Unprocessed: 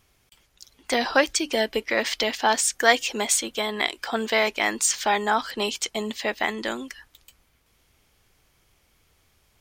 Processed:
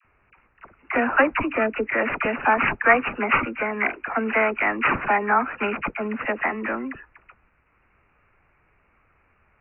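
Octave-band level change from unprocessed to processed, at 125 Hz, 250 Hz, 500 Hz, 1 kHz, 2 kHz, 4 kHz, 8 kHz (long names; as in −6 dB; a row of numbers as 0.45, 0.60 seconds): can't be measured, +3.5 dB, +0.5 dB, +3.5 dB, +3.5 dB, −15.5 dB, below −40 dB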